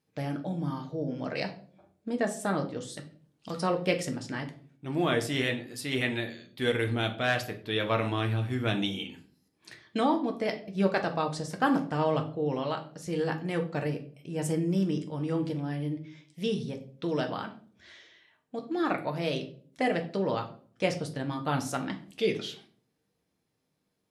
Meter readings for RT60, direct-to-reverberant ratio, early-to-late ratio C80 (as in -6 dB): 0.50 s, 3.5 dB, 17.5 dB